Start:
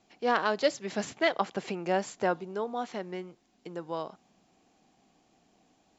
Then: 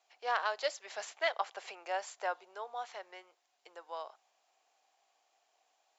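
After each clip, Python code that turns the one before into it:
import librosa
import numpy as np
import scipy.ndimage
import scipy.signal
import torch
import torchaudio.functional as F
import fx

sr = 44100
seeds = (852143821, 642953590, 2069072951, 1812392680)

y = scipy.signal.sosfilt(scipy.signal.butter(4, 610.0, 'highpass', fs=sr, output='sos'), x)
y = F.gain(torch.from_numpy(y), -4.5).numpy()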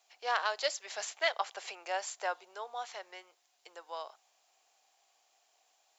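y = fx.high_shelf(x, sr, hz=3300.0, db=9.0)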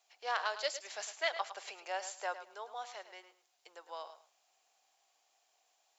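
y = fx.echo_feedback(x, sr, ms=107, feedback_pct=18, wet_db=-12)
y = F.gain(torch.from_numpy(y), -3.5).numpy()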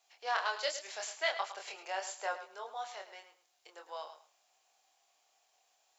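y = fx.doubler(x, sr, ms=26.0, db=-4.0)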